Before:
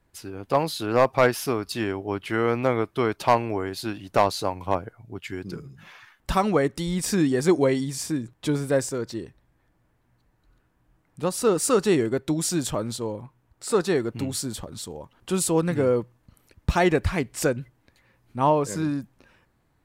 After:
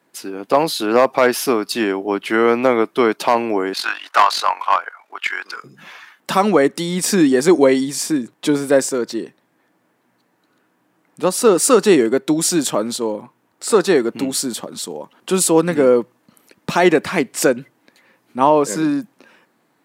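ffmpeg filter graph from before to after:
ffmpeg -i in.wav -filter_complex "[0:a]asettb=1/sr,asplit=3[link_01][link_02][link_03];[link_01]atrim=end=3.734[link_04];[link_02]atrim=start=3.73:end=5.64,asetpts=PTS-STARTPTS,afade=type=in:duration=0.004:curve=qsin,afade=type=out:start_time=1.906:duration=0.004:curve=qsin,tremolo=f=45:d=0.667,highpass=frequency=1200:width_type=q:width=1.6,asplit=2[link_05][link_06];[link_06]highpass=frequency=720:poles=1,volume=18dB,asoftclip=type=tanh:threshold=-11dB[link_07];[link_05][link_07]amix=inputs=2:normalize=0,lowpass=frequency=2200:poles=1,volume=-6dB[link_08];[link_03]atrim=start=5.636[link_09];[link_04][link_08]acrossfade=duration=0.004:curve1=hsin:curve2=qsin[link_10];[link_10][link_09]acrossfade=duration=0.004:curve1=qsin:curve2=hsin,highpass=frequency=200:width=0.5412,highpass=frequency=200:width=1.3066,alimiter=level_in=10dB:limit=-1dB:release=50:level=0:latency=1,volume=-1dB" out.wav

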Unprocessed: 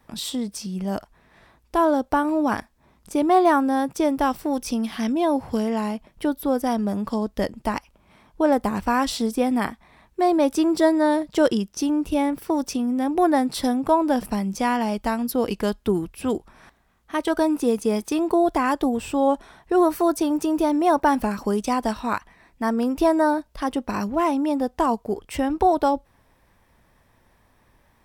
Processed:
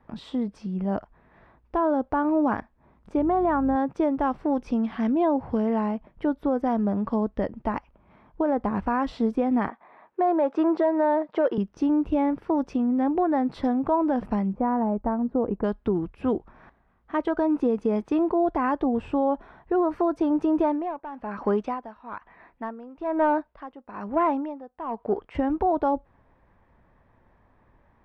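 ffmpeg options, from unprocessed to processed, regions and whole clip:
ffmpeg -i in.wav -filter_complex "[0:a]asettb=1/sr,asplit=3[link_01][link_02][link_03];[link_01]atrim=end=3.174[link_04];[link_02]atrim=start=3.17:end=3.76,asetpts=PTS-STARTPTS,afade=type=in:duration=0.004:curve=qsin,afade=type=out:start_time=0.586:duration=0.004:curve=qsin,aeval=exprs='val(0)+0.0178*(sin(2*PI*50*n/s)+sin(2*PI*2*50*n/s)/2+sin(2*PI*3*50*n/s)/3+sin(2*PI*4*50*n/s)/4+sin(2*PI*5*50*n/s)/5)':channel_layout=same,adynamicsmooth=sensitivity=0.5:basefreq=3600[link_05];[link_03]atrim=start=3.756[link_06];[link_04][link_05]acrossfade=duration=0.004:curve1=hsin:curve2=qsin[link_07];[link_07][link_06]acrossfade=duration=0.004:curve1=qsin:curve2=hsin,asettb=1/sr,asplit=3[link_08][link_09][link_10];[link_08]atrim=end=9.694[link_11];[link_09]atrim=start=9.69:end=11.58,asetpts=PTS-STARTPTS,afade=type=in:duration=0.004:curve=qsin,afade=type=out:start_time=1.886:duration=0.004:curve=qsin,highshelf=frequency=2600:gain=-11.5,acontrast=74,highpass=510,lowpass=6000[link_12];[link_10]atrim=start=11.576[link_13];[link_11][link_12]acrossfade=duration=0.004:curve1=hsin:curve2=qsin[link_14];[link_14][link_13]acrossfade=duration=0.004:curve1=qsin:curve2=hsin,asettb=1/sr,asplit=3[link_15][link_16][link_17];[link_15]atrim=end=14.534[link_18];[link_16]atrim=start=14.53:end=15.64,asetpts=PTS-STARTPTS,afade=type=in:duration=0.004:curve=qsin,afade=type=out:start_time=1.106:duration=0.004:curve=qsin,lowpass=1100,aemphasis=mode=reproduction:type=75kf[link_19];[link_17]atrim=start=15.636[link_20];[link_18][link_19]acrossfade=duration=0.004:curve1=hsin:curve2=qsin[link_21];[link_21][link_20]acrossfade=duration=0.004:curve1=qsin:curve2=hsin,asettb=1/sr,asplit=3[link_22][link_23][link_24];[link_22]atrim=end=20.604[link_25];[link_23]atrim=start=20.6:end=25.35,asetpts=PTS-STARTPTS,afade=type=in:duration=0.004:curve=qsin,afade=type=out:start_time=4.746:duration=0.004:curve=qsin,asplit=2[link_26][link_27];[link_27]highpass=frequency=720:poles=1,volume=12dB,asoftclip=type=tanh:threshold=-8dB[link_28];[link_26][link_28]amix=inputs=2:normalize=0,lowpass=frequency=3200:poles=1,volume=-6dB,aeval=exprs='val(0)*pow(10,-20*(0.5-0.5*cos(2*PI*1.1*n/s))/20)':channel_layout=same[link_29];[link_24]atrim=start=25.346[link_30];[link_25][link_29]acrossfade=duration=0.004:curve1=hsin:curve2=qsin[link_31];[link_31][link_30]acrossfade=duration=0.004:curve1=qsin:curve2=hsin,lowpass=1600,alimiter=limit=-14.5dB:level=0:latency=1:release=135" out.wav

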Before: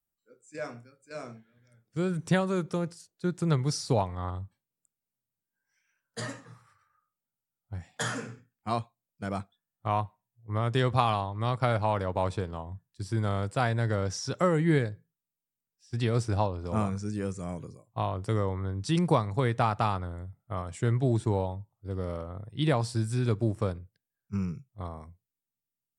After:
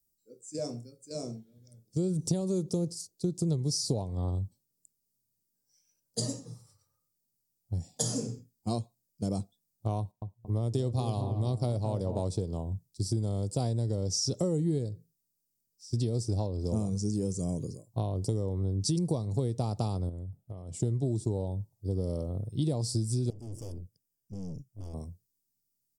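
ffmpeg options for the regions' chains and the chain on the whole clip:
ffmpeg -i in.wav -filter_complex "[0:a]asettb=1/sr,asplit=3[link_01][link_02][link_03];[link_01]atrim=end=9.994[link_04];[link_02]atrim=start=9.99:end=12.22,asetpts=PTS-STARTPTS,afade=type=in:duration=0.004:curve=qsin,afade=type=out:start_time=2.226:duration=0.004:curve=qsin,agate=range=-10dB:threshold=-53dB:ratio=16:release=100:detection=peak,asplit=2[link_05][link_06];[link_06]adelay=227,lowpass=frequency=1100:poles=1,volume=-10dB,asplit=2[link_07][link_08];[link_08]adelay=227,lowpass=frequency=1100:poles=1,volume=0.52,asplit=2[link_09][link_10];[link_10]adelay=227,lowpass=frequency=1100:poles=1,volume=0.52,asplit=2[link_11][link_12];[link_12]adelay=227,lowpass=frequency=1100:poles=1,volume=0.52,asplit=2[link_13][link_14];[link_14]adelay=227,lowpass=frequency=1100:poles=1,volume=0.52,asplit=2[link_15][link_16];[link_16]adelay=227,lowpass=frequency=1100:poles=1,volume=0.52[link_17];[link_05][link_07][link_09][link_11][link_13][link_15][link_17]amix=inputs=7:normalize=0,atrim=end_sample=98343[link_18];[link_03]atrim=start=12.216[link_19];[link_04][link_18]acrossfade=duration=0.004:curve1=hsin:curve2=qsin[link_20];[link_20][link_19]acrossfade=duration=0.004:curve1=qsin:curve2=hsin,asettb=1/sr,asplit=3[link_21][link_22][link_23];[link_21]atrim=end=20.094[link_24];[link_22]atrim=start=20.09:end=20.8,asetpts=PTS-STARTPTS,afade=type=in:duration=0.004:curve=qsin,afade=type=out:start_time=0.706:duration=0.004:curve=qsin,highshelf=frequency=3700:width_type=q:width=1.5:gain=-6,acompressor=threshold=-42dB:ratio=6:attack=3.2:release=140:knee=1:detection=peak[link_25];[link_23]atrim=start=20.796[link_26];[link_24][link_25]acrossfade=duration=0.004:curve1=hsin:curve2=qsin[link_27];[link_27][link_26]acrossfade=duration=0.004:curve1=qsin:curve2=hsin,asettb=1/sr,asplit=3[link_28][link_29][link_30];[link_28]atrim=end=23.304[link_31];[link_29]atrim=start=23.3:end=24.94,asetpts=PTS-STARTPTS,afade=type=in:duration=0.004:curve=qsin,afade=type=out:start_time=1.636:duration=0.004:curve=qsin,aeval=exprs='(tanh(158*val(0)+0.6)-tanh(0.6))/158':channel_layout=same,asuperstop=centerf=4000:order=8:qfactor=3.6[link_32];[link_30]atrim=start=24.936[link_33];[link_31][link_32]acrossfade=duration=0.004:curve1=hsin:curve2=qsin[link_34];[link_34][link_33]acrossfade=duration=0.004:curve1=qsin:curve2=hsin,firequalizer=gain_entry='entry(390,0);entry(1500,-29);entry(4800,4)':delay=0.05:min_phase=1,acompressor=threshold=-33dB:ratio=6,volume=6.5dB" out.wav

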